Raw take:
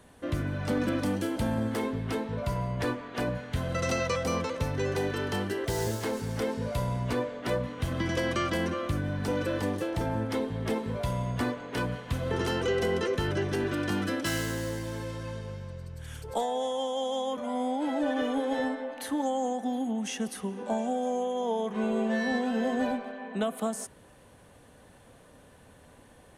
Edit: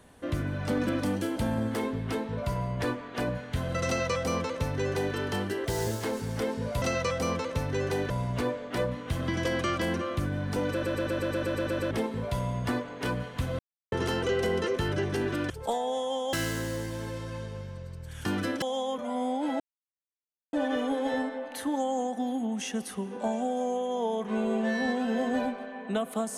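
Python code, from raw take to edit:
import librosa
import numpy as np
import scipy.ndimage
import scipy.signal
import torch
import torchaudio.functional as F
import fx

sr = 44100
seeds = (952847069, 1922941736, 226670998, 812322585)

y = fx.edit(x, sr, fx.duplicate(start_s=3.87, length_s=1.28, to_s=6.82),
    fx.stutter_over(start_s=9.43, slice_s=0.12, count=10),
    fx.insert_silence(at_s=12.31, length_s=0.33),
    fx.swap(start_s=13.89, length_s=0.37, other_s=16.18, other_length_s=0.83),
    fx.insert_silence(at_s=17.99, length_s=0.93), tone=tone)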